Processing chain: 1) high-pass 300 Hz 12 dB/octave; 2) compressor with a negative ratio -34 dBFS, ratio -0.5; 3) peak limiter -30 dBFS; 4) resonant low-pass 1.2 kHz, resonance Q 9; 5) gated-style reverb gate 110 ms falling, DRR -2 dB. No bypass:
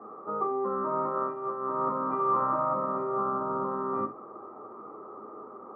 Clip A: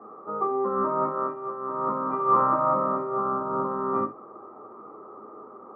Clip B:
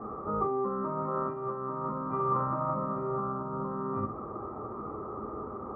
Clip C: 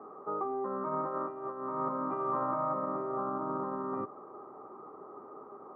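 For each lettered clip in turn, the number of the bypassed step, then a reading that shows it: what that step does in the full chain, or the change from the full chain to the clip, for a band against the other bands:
3, mean gain reduction 2.0 dB; 1, 125 Hz band +10.5 dB; 5, loudness change -5.0 LU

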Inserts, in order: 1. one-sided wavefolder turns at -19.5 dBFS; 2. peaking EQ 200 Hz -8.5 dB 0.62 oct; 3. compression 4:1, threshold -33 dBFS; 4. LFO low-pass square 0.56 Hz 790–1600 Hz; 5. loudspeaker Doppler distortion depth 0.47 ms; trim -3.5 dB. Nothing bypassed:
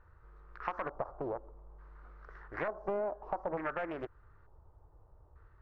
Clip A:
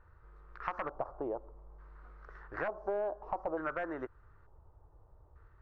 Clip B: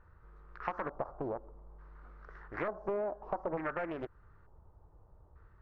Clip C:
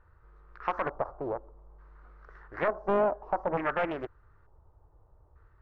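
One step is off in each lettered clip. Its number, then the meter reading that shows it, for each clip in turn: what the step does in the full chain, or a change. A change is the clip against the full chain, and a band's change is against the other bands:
5, 125 Hz band -3.0 dB; 2, 250 Hz band +2.0 dB; 3, mean gain reduction 2.5 dB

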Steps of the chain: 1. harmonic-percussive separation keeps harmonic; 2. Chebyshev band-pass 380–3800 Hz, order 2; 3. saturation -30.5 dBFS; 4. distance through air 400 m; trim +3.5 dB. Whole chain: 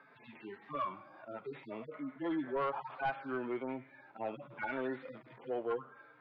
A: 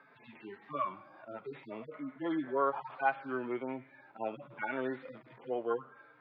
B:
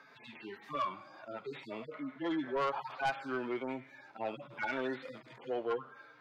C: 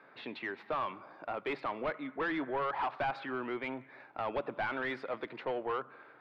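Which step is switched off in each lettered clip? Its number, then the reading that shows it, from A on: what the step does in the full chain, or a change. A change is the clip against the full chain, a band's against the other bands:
3, distortion -11 dB; 4, 4 kHz band +7.5 dB; 1, 4 kHz band +7.0 dB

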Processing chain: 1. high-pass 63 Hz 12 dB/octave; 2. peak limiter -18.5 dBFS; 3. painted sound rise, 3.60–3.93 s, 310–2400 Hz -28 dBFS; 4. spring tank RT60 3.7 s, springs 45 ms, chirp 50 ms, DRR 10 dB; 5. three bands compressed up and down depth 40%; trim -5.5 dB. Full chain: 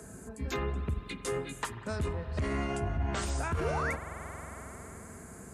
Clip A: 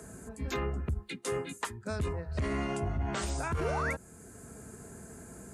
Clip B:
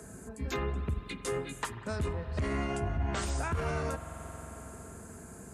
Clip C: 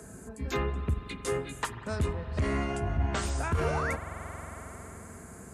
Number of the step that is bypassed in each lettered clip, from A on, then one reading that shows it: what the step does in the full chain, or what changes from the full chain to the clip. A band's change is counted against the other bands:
4, momentary loudness spread change +2 LU; 3, 2 kHz band -1.5 dB; 2, momentary loudness spread change +1 LU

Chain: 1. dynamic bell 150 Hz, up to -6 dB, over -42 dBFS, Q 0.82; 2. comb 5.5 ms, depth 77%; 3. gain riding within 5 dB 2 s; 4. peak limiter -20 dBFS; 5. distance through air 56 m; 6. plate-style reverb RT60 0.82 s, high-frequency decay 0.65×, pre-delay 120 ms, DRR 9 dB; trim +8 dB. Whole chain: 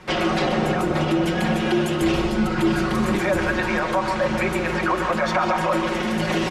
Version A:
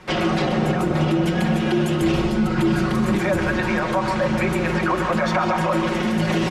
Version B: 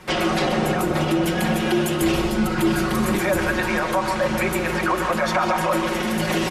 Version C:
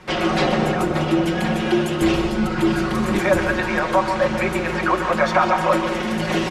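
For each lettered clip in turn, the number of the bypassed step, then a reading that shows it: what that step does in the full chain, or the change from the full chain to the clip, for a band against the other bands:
1, 125 Hz band +5.0 dB; 5, 8 kHz band +5.5 dB; 4, crest factor change +3.5 dB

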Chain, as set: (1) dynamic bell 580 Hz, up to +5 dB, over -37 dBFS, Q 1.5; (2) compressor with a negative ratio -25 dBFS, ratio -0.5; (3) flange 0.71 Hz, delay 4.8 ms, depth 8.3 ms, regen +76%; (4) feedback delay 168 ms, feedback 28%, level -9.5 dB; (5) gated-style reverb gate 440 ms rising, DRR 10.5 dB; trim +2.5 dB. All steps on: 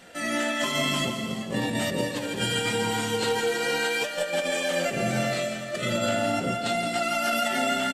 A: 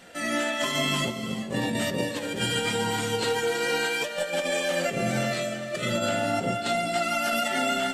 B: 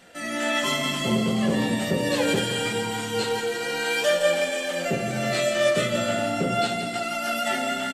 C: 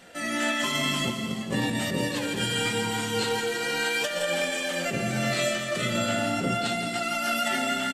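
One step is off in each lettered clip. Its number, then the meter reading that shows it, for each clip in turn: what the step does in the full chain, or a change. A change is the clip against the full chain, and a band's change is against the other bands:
4, echo-to-direct -6.5 dB to -10.5 dB; 2, 500 Hz band +2.0 dB; 1, 500 Hz band -3.0 dB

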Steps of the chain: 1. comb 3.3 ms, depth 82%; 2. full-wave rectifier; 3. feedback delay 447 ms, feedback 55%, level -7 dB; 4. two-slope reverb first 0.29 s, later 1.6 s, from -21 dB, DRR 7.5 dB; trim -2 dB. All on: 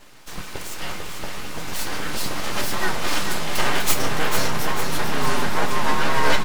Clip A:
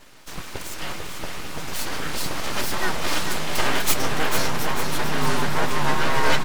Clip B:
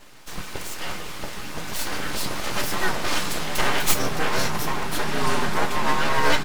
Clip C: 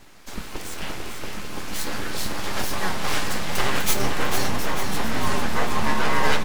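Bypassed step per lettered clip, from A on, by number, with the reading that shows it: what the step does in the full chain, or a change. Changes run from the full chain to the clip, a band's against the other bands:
4, echo-to-direct -3.0 dB to -5.5 dB; 3, echo-to-direct -3.0 dB to -7.5 dB; 1, 250 Hz band +2.0 dB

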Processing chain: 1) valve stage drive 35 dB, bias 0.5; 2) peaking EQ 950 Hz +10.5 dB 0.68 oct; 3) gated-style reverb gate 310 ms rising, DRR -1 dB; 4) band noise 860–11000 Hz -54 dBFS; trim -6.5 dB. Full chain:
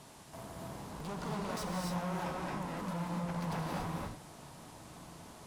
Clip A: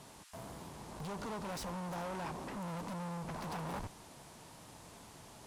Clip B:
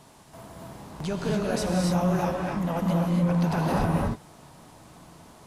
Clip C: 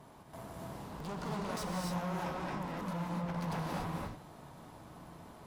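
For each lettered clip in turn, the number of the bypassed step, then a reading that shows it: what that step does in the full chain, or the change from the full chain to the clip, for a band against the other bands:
3, crest factor change -2.5 dB; 1, 250 Hz band +5.0 dB; 4, 8 kHz band -2.0 dB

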